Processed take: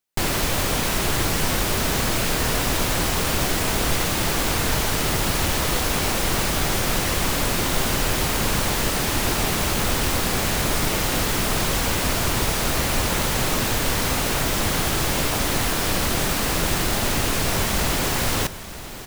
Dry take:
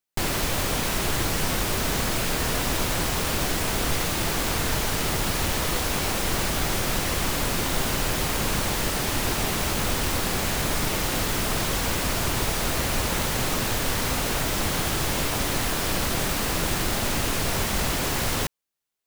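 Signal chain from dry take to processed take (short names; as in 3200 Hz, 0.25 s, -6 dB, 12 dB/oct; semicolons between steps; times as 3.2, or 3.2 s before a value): feedback echo 0.939 s, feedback 53%, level -15 dB; gain +3 dB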